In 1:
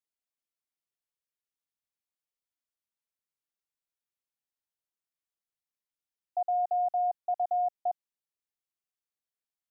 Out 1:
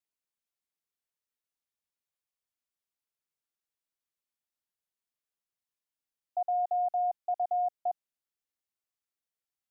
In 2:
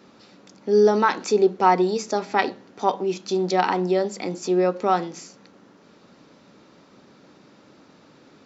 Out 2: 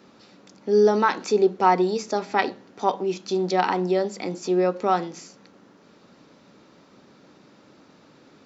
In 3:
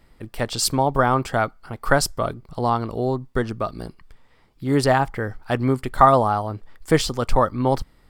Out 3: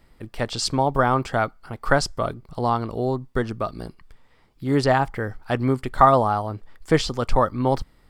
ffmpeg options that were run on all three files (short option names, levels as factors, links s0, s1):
-filter_complex "[0:a]acrossover=split=7600[s0][s1];[s1]acompressor=threshold=0.00224:ratio=4:attack=1:release=60[s2];[s0][s2]amix=inputs=2:normalize=0,volume=0.891"